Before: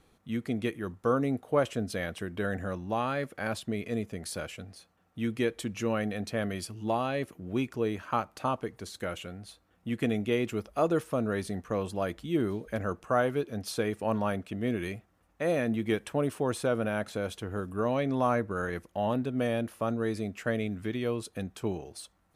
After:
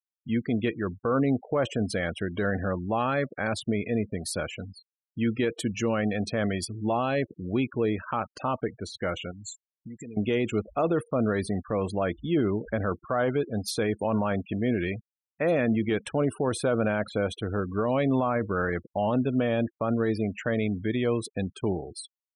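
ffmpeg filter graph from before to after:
-filter_complex "[0:a]asettb=1/sr,asplit=3[s0][s1][s2];[s0]atrim=end=9.314[s3];[s1]atrim=start=9.31:end=10.17,asetpts=PTS-STARTPTS,afade=t=in:d=0.004:c=qsin,afade=t=out:st=0.856:d=0.004:c=qsin,bandreject=f=4900:w=9.2,acompressor=threshold=0.00562:ratio=5:attack=3.2:release=140:knee=1:detection=peak,lowpass=f=7300:t=q:w=14[s4];[s2]atrim=start=10.166[s5];[s3][s4]acrossfade=d=0.004:c1=hsin:c2=qsin[s6];[s6][s5]acrossfade=d=0.004:c1=qsin:c2=hsin,acontrast=49,afftfilt=real='re*gte(hypot(re,im),0.0178)':imag='im*gte(hypot(re,im),0.0178)':win_size=1024:overlap=0.75,alimiter=limit=0.15:level=0:latency=1:release=20"

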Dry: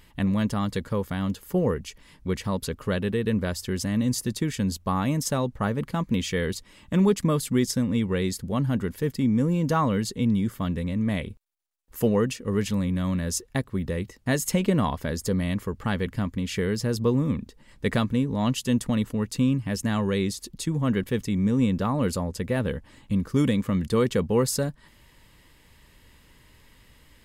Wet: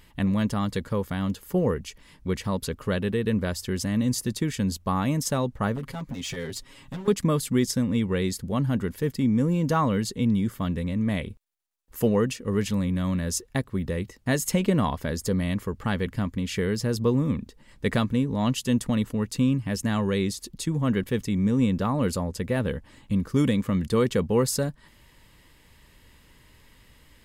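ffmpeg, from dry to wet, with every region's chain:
-filter_complex "[0:a]asettb=1/sr,asplit=3[s0][s1][s2];[s0]atrim=end=5.764[s3];[s1]atrim=start=5.76:end=7.08,asetpts=PTS-STARTPTS,afade=t=in:d=0.004:c=qsin,afade=t=out:st=1.316:d=0.004:c=qsin,acompressor=threshold=0.0282:ratio=6:attack=3.2:release=140:knee=1:detection=peak,aeval=exprs='0.0376*(abs(mod(val(0)/0.0376+3,4)-2)-1)':c=same,aecho=1:1:7.4:0.94,atrim=end_sample=58212[s4];[s2]atrim=start=7.076[s5];[s3][s4]acrossfade=d=0.004:c1=hsin:c2=qsin[s6];[s6][s5]acrossfade=d=0.004:c1=qsin:c2=hsin"

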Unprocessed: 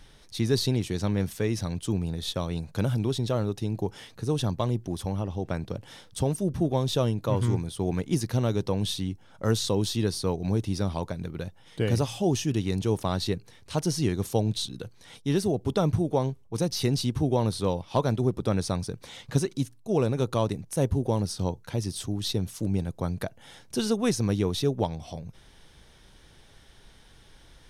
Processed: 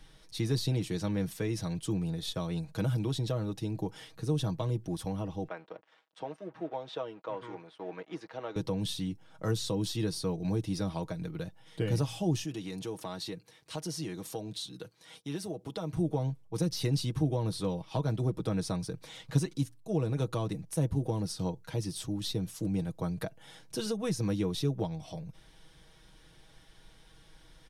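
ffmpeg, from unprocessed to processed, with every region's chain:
-filter_complex "[0:a]asettb=1/sr,asplit=3[s0][s1][s2];[s0]atrim=end=5.484[s3];[s1]atrim=start=5.48:end=8.56,asetpts=PTS-STARTPTS,afade=t=in:d=0.004:c=qsin,afade=t=out:st=3.076:d=0.004:c=qsin,acompressor=mode=upward:threshold=0.00562:ratio=2.5:attack=3.2:release=140:knee=2.83:detection=peak,aeval=exprs='sgn(val(0))*max(abs(val(0))-0.00473,0)':c=same,highpass=530,lowpass=2300[s4];[s2]atrim=start=8.556[s5];[s3][s4]acrossfade=d=0.004:c1=hsin:c2=qsin[s6];[s6][s5]acrossfade=d=0.004:c1=qsin:c2=hsin,asettb=1/sr,asplit=3[s7][s8][s9];[s7]atrim=end=12.444[s10];[s8]atrim=start=12.44:end=15.97,asetpts=PTS-STARTPTS,afade=t=in:d=0.004:c=qsin,afade=t=out:st=3.526:d=0.004:c=qsin,highpass=f=250:p=1,acompressor=threshold=0.0224:ratio=2:attack=3.2:release=140:knee=1:detection=peak[s11];[s9]atrim=start=15.966[s12];[s10][s11]acrossfade=d=0.004:c1=hsin:c2=qsin[s13];[s13][s12]acrossfade=d=0.004:c1=qsin:c2=hsin,bandreject=f=6300:w=26,aecho=1:1:6.3:0.62,acrossover=split=300[s14][s15];[s15]acompressor=threshold=0.0398:ratio=6[s16];[s14][s16]amix=inputs=2:normalize=0,volume=0.562"

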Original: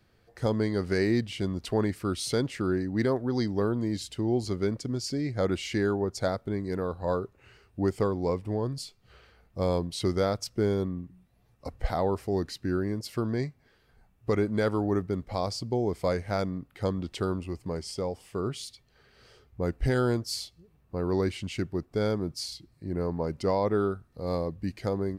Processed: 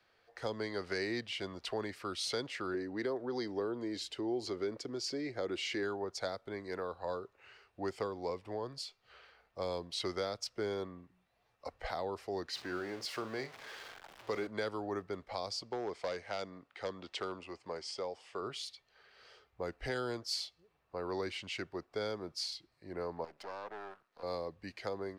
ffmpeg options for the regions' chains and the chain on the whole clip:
-filter_complex "[0:a]asettb=1/sr,asplit=3[s0][s1][s2];[s0]atrim=end=2.744[s3];[s1]atrim=start=2.74:end=5.83,asetpts=PTS-STARTPTS,afade=t=in:d=0.004:c=qsin,afade=t=out:st=3.086:d=0.004:c=qsin,acompressor=threshold=0.0355:ratio=2:attack=3.2:release=140:knee=1:detection=peak,equalizer=f=350:t=o:w=1.1:g=8[s4];[s2]atrim=start=5.826[s5];[s3][s4]acrossfade=d=0.004:c1=hsin:c2=qsin[s6];[s6][s5]acrossfade=d=0.004:c1=qsin:c2=hsin,asettb=1/sr,asplit=3[s7][s8][s9];[s7]atrim=end=12.534[s10];[s8]atrim=start=12.53:end=14.47,asetpts=PTS-STARTPTS,afade=t=in:d=0.004:c=qsin,afade=t=out:st=1.936:d=0.004:c=qsin,aeval=exprs='val(0)+0.5*0.00944*sgn(val(0))':c=same,lowshelf=f=100:g=-9,asplit=2[s11][s12];[s12]adelay=45,volume=0.237[s13];[s11][s13]amix=inputs=2:normalize=0,atrim=end_sample=85554[s14];[s9]atrim=start=14.466[s15];[s10][s14]acrossfade=d=0.004:c1=hsin:c2=qsin[s16];[s16][s15]acrossfade=d=0.004:c1=qsin:c2=hsin,asettb=1/sr,asplit=3[s17][s18][s19];[s17]atrim=end=15.624[s20];[s18]atrim=start=15.62:end=18.42,asetpts=PTS-STARTPTS,afade=t=in:d=0.004:c=qsin,afade=t=out:st=2.796:d=0.004:c=qsin,lowpass=f=9100:w=0.5412,lowpass=f=9100:w=1.3066,lowshelf=f=98:g=-10.5,aeval=exprs='clip(val(0),-1,0.0841)':c=same[s21];[s19]atrim=start=18.416[s22];[s20][s21]acrossfade=d=0.004:c1=hsin:c2=qsin[s23];[s23][s22]acrossfade=d=0.004:c1=qsin:c2=hsin,asettb=1/sr,asplit=3[s24][s25][s26];[s24]atrim=end=23.244[s27];[s25]atrim=start=23.24:end=24.23,asetpts=PTS-STARTPTS,afade=t=in:d=0.004:c=qsin,afade=t=out:st=0.986:d=0.004:c=qsin,highpass=f=150:w=0.5412,highpass=f=150:w=1.3066,acompressor=threshold=0.01:ratio=2:attack=3.2:release=140:knee=1:detection=peak,aeval=exprs='max(val(0),0)':c=same[s28];[s26]atrim=start=24.226[s29];[s27][s28]acrossfade=d=0.004:c1=hsin:c2=qsin[s30];[s30][s29]acrossfade=d=0.004:c1=qsin:c2=hsin,acrossover=split=470 5800:gain=0.112 1 0.224[s31][s32][s33];[s31][s32][s33]amix=inputs=3:normalize=0,acrossover=split=370|3000[s34][s35][s36];[s35]acompressor=threshold=0.0126:ratio=6[s37];[s34][s37][s36]amix=inputs=3:normalize=0"

